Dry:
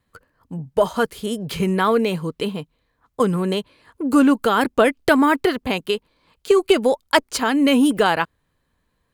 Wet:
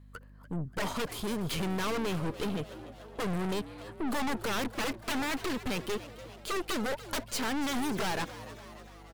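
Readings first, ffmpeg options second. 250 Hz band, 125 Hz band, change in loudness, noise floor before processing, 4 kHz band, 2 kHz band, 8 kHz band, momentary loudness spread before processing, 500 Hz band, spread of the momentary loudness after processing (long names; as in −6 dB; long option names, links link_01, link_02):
−15.0 dB, −8.0 dB, −14.5 dB, −71 dBFS, −10.0 dB, −12.5 dB, −6.0 dB, 11 LU, −17.0 dB, 13 LU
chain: -filter_complex "[0:a]aeval=exprs='0.168*(abs(mod(val(0)/0.168+3,4)-2)-1)':channel_layout=same,aeval=exprs='(tanh(44.7*val(0)+0.65)-tanh(0.65))/44.7':channel_layout=same,aeval=exprs='val(0)+0.002*(sin(2*PI*50*n/s)+sin(2*PI*2*50*n/s)/2+sin(2*PI*3*50*n/s)/3+sin(2*PI*4*50*n/s)/4+sin(2*PI*5*50*n/s)/5)':channel_layout=same,asplit=2[link_01][link_02];[link_02]asplit=6[link_03][link_04][link_05][link_06][link_07][link_08];[link_03]adelay=291,afreqshift=110,volume=-15dB[link_09];[link_04]adelay=582,afreqshift=220,volume=-19.7dB[link_10];[link_05]adelay=873,afreqshift=330,volume=-24.5dB[link_11];[link_06]adelay=1164,afreqshift=440,volume=-29.2dB[link_12];[link_07]adelay=1455,afreqshift=550,volume=-33.9dB[link_13];[link_08]adelay=1746,afreqshift=660,volume=-38.7dB[link_14];[link_09][link_10][link_11][link_12][link_13][link_14]amix=inputs=6:normalize=0[link_15];[link_01][link_15]amix=inputs=2:normalize=0,volume=2dB"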